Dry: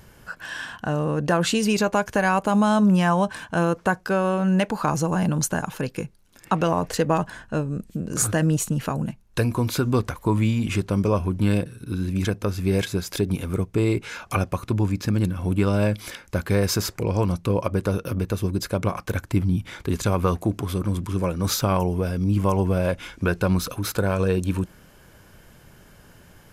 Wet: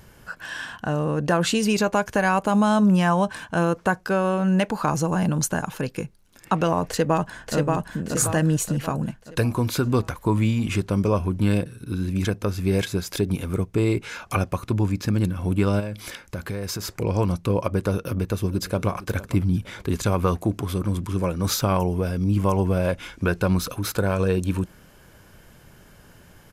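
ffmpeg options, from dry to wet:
ffmpeg -i in.wav -filter_complex "[0:a]asplit=2[link_01][link_02];[link_02]afade=type=in:start_time=6.88:duration=0.01,afade=type=out:start_time=7.56:duration=0.01,aecho=0:1:580|1160|1740|2320|2900|3480:0.749894|0.337452|0.151854|0.0683341|0.0307503|0.0138377[link_03];[link_01][link_03]amix=inputs=2:normalize=0,asplit=3[link_04][link_05][link_06];[link_04]afade=type=out:start_time=15.79:duration=0.02[link_07];[link_05]acompressor=threshold=-26dB:ratio=5:attack=3.2:release=140:knee=1:detection=peak,afade=type=in:start_time=15.79:duration=0.02,afade=type=out:start_time=16.91:duration=0.02[link_08];[link_06]afade=type=in:start_time=16.91:duration=0.02[link_09];[link_07][link_08][link_09]amix=inputs=3:normalize=0,asplit=2[link_10][link_11];[link_11]afade=type=in:start_time=18:duration=0.01,afade=type=out:start_time=18.89:duration=0.01,aecho=0:1:460|920|1380:0.141254|0.0565015|0.0226006[link_12];[link_10][link_12]amix=inputs=2:normalize=0" out.wav

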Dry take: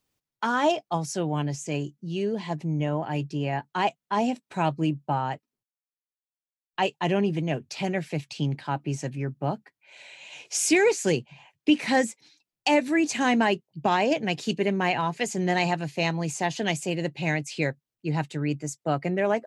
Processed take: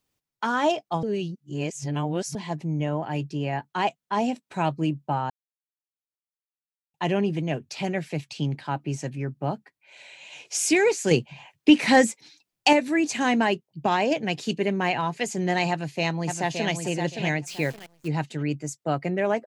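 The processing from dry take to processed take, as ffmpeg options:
ffmpeg -i in.wav -filter_complex "[0:a]asettb=1/sr,asplit=3[link_01][link_02][link_03];[link_01]atrim=end=11.114[link_04];[link_02]atrim=start=11.11:end=12.73,asetpts=PTS-STARTPTS,afade=type=in:duration=0.004:curve=qsin,afade=type=out:start_time=1.616:duration=0.004:curve=qsin,acontrast=42[link_05];[link_03]atrim=start=12.726[link_06];[link_04][link_05]acrossfade=duration=0.004:curve1=hsin:curve2=qsin[link_07];[link_07][link_06]acrossfade=duration=0.004:curve1=qsin:curve2=hsin,asplit=2[link_08][link_09];[link_09]afade=type=in:start_time=15.7:duration=0.01,afade=type=out:start_time=16.72:duration=0.01,aecho=0:1:570|1140|1710:0.501187|0.125297|0.0313242[link_10];[link_08][link_10]amix=inputs=2:normalize=0,asettb=1/sr,asplit=3[link_11][link_12][link_13];[link_11]atrim=end=17.474[link_14];[link_12]atrim=start=17.47:end=18.08,asetpts=PTS-STARTPTS,afade=type=in:duration=0.004:curve=qsin,afade=type=out:start_time=0.606:duration=0.004:curve=qsin,acrusher=bits=8:dc=4:mix=0:aa=0.000001[link_15];[link_13]atrim=start=18.076[link_16];[link_14][link_15]acrossfade=duration=0.004:curve1=hsin:curve2=qsin[link_17];[link_17][link_16]acrossfade=duration=0.004:curve1=qsin:curve2=hsin,asplit=5[link_18][link_19][link_20][link_21][link_22];[link_18]atrim=end=1.032[link_23];[link_19]atrim=start=1.028:end=2.352,asetpts=PTS-STARTPTS,areverse[link_24];[link_20]atrim=start=2.348:end=5.3,asetpts=PTS-STARTPTS,afade=type=out:start_time=2.948:duration=0.004:curve=hsin[link_25];[link_21]atrim=start=5.3:end=6.94,asetpts=PTS-STARTPTS,volume=0[link_26];[link_22]atrim=start=6.94,asetpts=PTS-STARTPTS,afade=type=in:duration=0.004:curve=hsin[link_27];[link_23][link_24]acrossfade=duration=0.004:curve1=hsin:curve2=hsin[link_28];[link_25][link_26][link_27]concat=n=3:v=0:a=1[link_29];[link_28][link_29]acrossfade=duration=0.004:curve1=hsin:curve2=hsin" out.wav

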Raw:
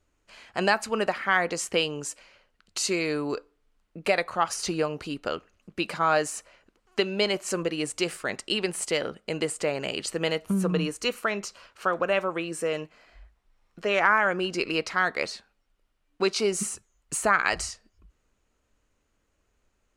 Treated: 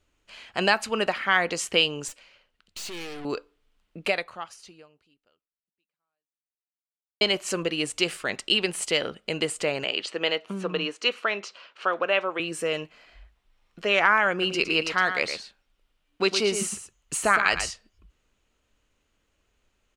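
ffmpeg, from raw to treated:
ffmpeg -i in.wav -filter_complex "[0:a]asettb=1/sr,asplit=3[link_01][link_02][link_03];[link_01]atrim=end=2.084[link_04];[link_02]atrim=start=2.08:end=3.25,asetpts=PTS-STARTPTS,afade=type=in:duration=0.004:curve=qsin,afade=type=out:start_time=1.166:duration=0.004:curve=qsin,aeval=exprs='(tanh(70.8*val(0)+0.7)-tanh(0.7))/70.8':channel_layout=same[link_05];[link_03]atrim=start=3.246[link_06];[link_04][link_05]acrossfade=duration=0.004:curve1=hsin:curve2=qsin[link_07];[link_07][link_06]acrossfade=duration=0.004:curve1=qsin:curve2=hsin,asettb=1/sr,asplit=3[link_08][link_09][link_10];[link_08]atrim=end=9.844[link_11];[link_09]atrim=start=9.84:end=12.4,asetpts=PTS-STARTPTS,afade=type=in:duration=0.004:curve=qsin,afade=type=out:start_time=2.556:duration=0.004:curve=qsin,highpass=310,lowpass=4600[link_12];[link_10]atrim=start=12.396[link_13];[link_11][link_12]acrossfade=duration=0.004:curve1=hsin:curve2=qsin[link_14];[link_14][link_13]acrossfade=duration=0.004:curve1=qsin:curve2=hsin,asplit=3[link_15][link_16][link_17];[link_15]afade=type=out:start_time=14.41:duration=0.02[link_18];[link_16]aecho=1:1:113:0.355,afade=type=in:start_time=14.41:duration=0.02,afade=type=out:start_time=17.69:duration=0.02[link_19];[link_17]afade=type=in:start_time=17.69:duration=0.02[link_20];[link_18][link_19][link_20]amix=inputs=3:normalize=0,asplit=2[link_21][link_22];[link_21]atrim=end=7.21,asetpts=PTS-STARTPTS,afade=type=out:start_time=4.01:duration=3.2:curve=exp[link_23];[link_22]atrim=start=7.21,asetpts=PTS-STARTPTS,afade=type=in:duration=0.004:curve=hsin[link_24];[link_23][link_24]concat=n=2:v=0:a=1,equalizer=frequency=3100:width_type=o:width=0.96:gain=7" out.wav

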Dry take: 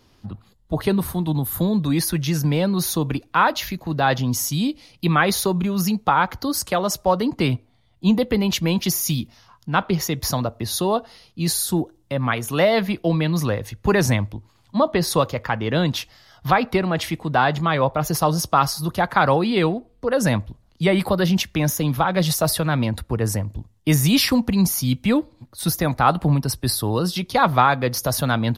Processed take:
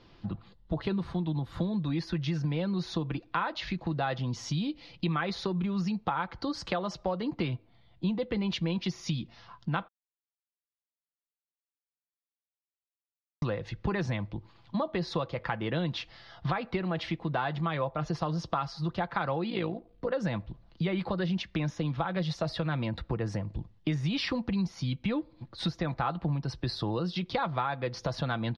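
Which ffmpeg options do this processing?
ffmpeg -i in.wav -filter_complex "[0:a]asettb=1/sr,asplit=3[link_01][link_02][link_03];[link_01]atrim=end=19.504[link_04];[link_02]atrim=start=19.5:end=20.13,asetpts=PTS-STARTPTS,afade=type=in:duration=0.004:curve=qsin,afade=type=out:start_time=0.626:duration=0.004:curve=qsin,tremolo=f=56:d=0.75[link_05];[link_03]atrim=start=20.126[link_06];[link_04][link_05]acrossfade=duration=0.004:curve1=hsin:curve2=qsin[link_07];[link_07][link_06]acrossfade=duration=0.004:curve1=qsin:curve2=hsin,asplit=3[link_08][link_09][link_10];[link_08]atrim=end=9.88,asetpts=PTS-STARTPTS,afade=type=out:start_time=9.876:duration=0.004:curve=hsin[link_11];[link_09]atrim=start=9.88:end=13.42,asetpts=PTS-STARTPTS,volume=0[link_12];[link_10]atrim=start=13.42,asetpts=PTS-STARTPTS,afade=type=in:duration=0.004:curve=hsin[link_13];[link_11][link_12][link_13]concat=n=3:v=0:a=1,lowpass=frequency=4400:width=0.5412,lowpass=frequency=4400:width=1.3066,aecho=1:1:5.9:0.38,acompressor=threshold=-30dB:ratio=4" out.wav

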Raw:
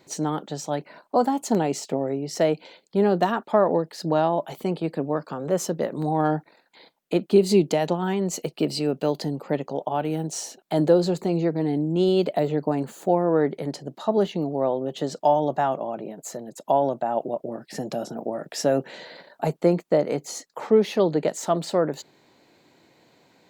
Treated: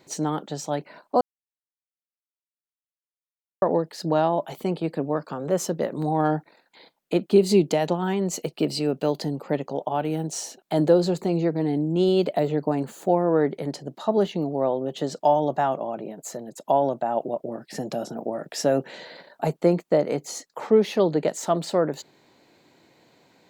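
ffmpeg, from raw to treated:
ffmpeg -i in.wav -filter_complex "[0:a]asplit=3[link_01][link_02][link_03];[link_01]atrim=end=1.21,asetpts=PTS-STARTPTS,afade=type=out:start_time=1.206:duration=0.004:curve=hsin[link_04];[link_02]atrim=start=1.21:end=3.62,asetpts=PTS-STARTPTS,volume=0[link_05];[link_03]atrim=start=3.62,asetpts=PTS-STARTPTS,afade=type=in:duration=0.004:curve=hsin[link_06];[link_04][link_05][link_06]concat=n=3:v=0:a=1" out.wav

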